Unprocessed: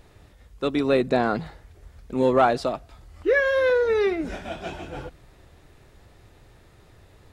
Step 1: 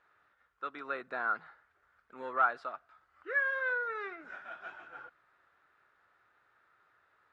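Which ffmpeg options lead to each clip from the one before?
ffmpeg -i in.wav -af "bandpass=frequency=1400:width_type=q:width=4.9:csg=0" out.wav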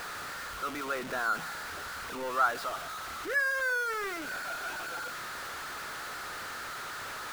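ffmpeg -i in.wav -af "aeval=exprs='val(0)+0.5*0.02*sgn(val(0))':channel_layout=same,bandreject=frequency=58.76:width_type=h:width=4,bandreject=frequency=117.52:width_type=h:width=4,bandreject=frequency=176.28:width_type=h:width=4,bandreject=frequency=235.04:width_type=h:width=4" out.wav

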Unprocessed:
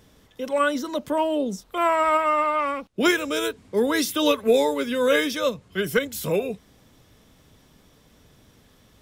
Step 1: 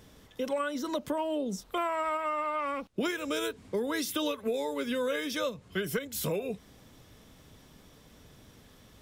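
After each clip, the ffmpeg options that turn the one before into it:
ffmpeg -i in.wav -af "acompressor=threshold=-28dB:ratio=12" out.wav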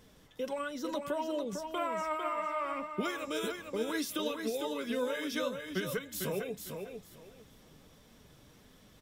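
ffmpeg -i in.wav -filter_complex "[0:a]flanger=delay=3.7:depth=3.6:regen=54:speed=1.6:shape=triangular,asplit=2[link_01][link_02];[link_02]aecho=0:1:451|902|1353:0.501|0.11|0.0243[link_03];[link_01][link_03]amix=inputs=2:normalize=0" out.wav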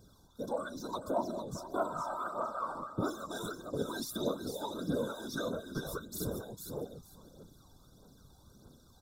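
ffmpeg -i in.wav -af "afftfilt=real='hypot(re,im)*cos(2*PI*random(0))':imag='hypot(re,im)*sin(2*PI*random(1))':win_size=512:overlap=0.75,afftfilt=real='re*(1-between(b*sr/4096,1600,3400))':imag='im*(1-between(b*sr/4096,1600,3400))':win_size=4096:overlap=0.75,aphaser=in_gain=1:out_gain=1:delay=1.3:decay=0.55:speed=1.6:type=triangular,volume=3dB" out.wav

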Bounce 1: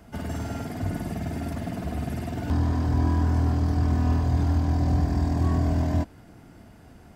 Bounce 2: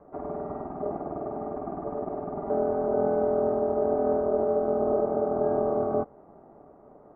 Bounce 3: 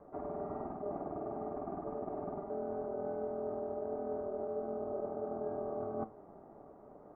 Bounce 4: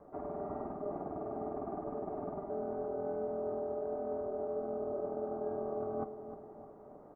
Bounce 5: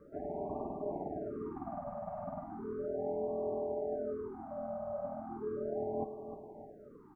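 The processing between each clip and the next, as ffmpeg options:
ffmpeg -i in.wav -af "aeval=exprs='val(0)*sin(2*PI*510*n/s)':channel_layout=same,lowpass=frequency=1200:width=0.5412,lowpass=frequency=1200:width=1.3066" out.wav
ffmpeg -i in.wav -af "areverse,acompressor=threshold=-33dB:ratio=6,areverse,flanger=delay=8.7:depth=1.9:regen=81:speed=1.5:shape=triangular,volume=1.5dB" out.wav
ffmpeg -i in.wav -filter_complex "[0:a]asplit=2[link_01][link_02];[link_02]adelay=306,lowpass=frequency=1100:poles=1,volume=-9.5dB,asplit=2[link_03][link_04];[link_04]adelay=306,lowpass=frequency=1100:poles=1,volume=0.52,asplit=2[link_05][link_06];[link_06]adelay=306,lowpass=frequency=1100:poles=1,volume=0.52,asplit=2[link_07][link_08];[link_08]adelay=306,lowpass=frequency=1100:poles=1,volume=0.52,asplit=2[link_09][link_10];[link_10]adelay=306,lowpass=frequency=1100:poles=1,volume=0.52,asplit=2[link_11][link_12];[link_12]adelay=306,lowpass=frequency=1100:poles=1,volume=0.52[link_13];[link_01][link_03][link_05][link_07][link_09][link_11][link_13]amix=inputs=7:normalize=0" out.wav
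ffmpeg -i in.wav -af "afftfilt=real='re*(1-between(b*sr/1024,340*pow(1700/340,0.5+0.5*sin(2*PI*0.36*pts/sr))/1.41,340*pow(1700/340,0.5+0.5*sin(2*PI*0.36*pts/sr))*1.41))':imag='im*(1-between(b*sr/1024,340*pow(1700/340,0.5+0.5*sin(2*PI*0.36*pts/sr))/1.41,340*pow(1700/340,0.5+0.5*sin(2*PI*0.36*pts/sr))*1.41))':win_size=1024:overlap=0.75,volume=1dB" out.wav

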